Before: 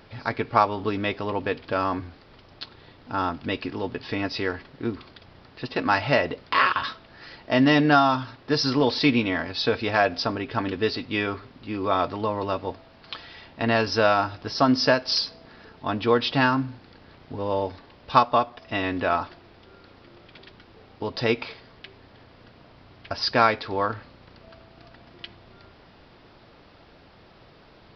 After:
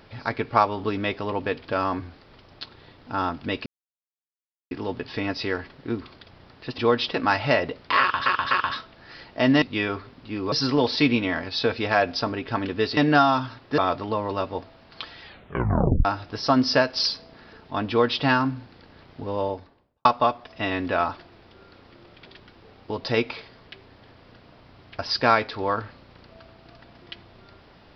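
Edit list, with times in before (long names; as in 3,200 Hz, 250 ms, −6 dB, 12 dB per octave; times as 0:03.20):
0:03.66: splice in silence 1.05 s
0:06.63–0:06.88: repeat, 3 plays
0:07.74–0:08.55: swap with 0:11.00–0:11.90
0:13.35: tape stop 0.82 s
0:16.01–0:16.34: duplicate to 0:05.73
0:17.41–0:18.17: fade out and dull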